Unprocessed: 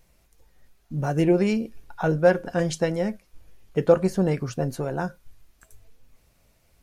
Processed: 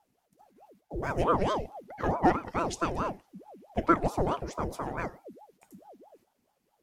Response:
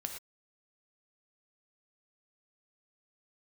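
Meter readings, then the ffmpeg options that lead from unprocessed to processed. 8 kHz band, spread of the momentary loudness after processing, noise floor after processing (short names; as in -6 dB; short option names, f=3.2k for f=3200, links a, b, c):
-6.0 dB, 11 LU, -76 dBFS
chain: -filter_complex "[0:a]agate=range=-7dB:threshold=-57dB:ratio=16:detection=peak,asplit=2[a][b];[1:a]atrim=start_sample=2205[c];[b][c]afir=irnorm=-1:irlink=0,volume=-9.5dB[d];[a][d]amix=inputs=2:normalize=0,aeval=exprs='val(0)*sin(2*PI*520*n/s+520*0.65/4.6*sin(2*PI*4.6*n/s))':c=same,volume=-5.5dB"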